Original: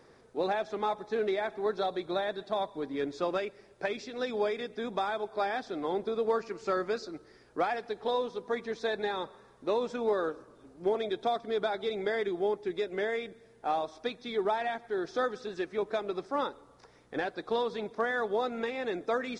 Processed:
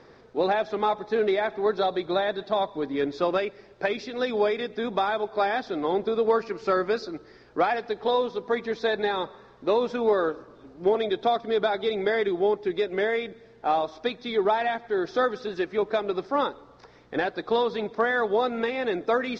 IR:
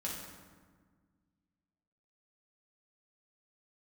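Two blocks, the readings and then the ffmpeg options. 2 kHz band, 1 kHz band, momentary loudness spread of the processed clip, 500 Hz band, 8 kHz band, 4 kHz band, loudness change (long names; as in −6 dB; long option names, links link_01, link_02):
+6.5 dB, +6.5 dB, 6 LU, +6.5 dB, can't be measured, +6.5 dB, +6.5 dB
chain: -af "lowpass=frequency=5400:width=0.5412,lowpass=frequency=5400:width=1.3066,volume=6.5dB"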